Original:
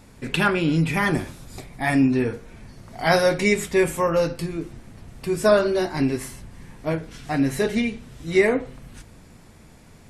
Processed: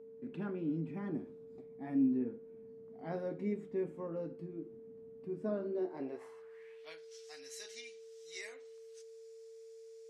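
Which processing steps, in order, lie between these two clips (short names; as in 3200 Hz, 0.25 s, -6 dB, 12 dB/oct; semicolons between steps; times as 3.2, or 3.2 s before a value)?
band-pass sweep 240 Hz -> 5800 Hz, 5.69–7.1; whine 450 Hz -42 dBFS; low shelf 160 Hz -11.5 dB; gain -7 dB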